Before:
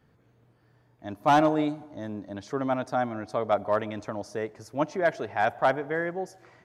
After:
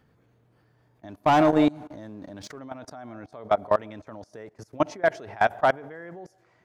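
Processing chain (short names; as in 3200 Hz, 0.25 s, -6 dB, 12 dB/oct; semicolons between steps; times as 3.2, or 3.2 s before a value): 1.09–2.59 sample leveller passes 1; level quantiser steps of 23 dB; gain +5.5 dB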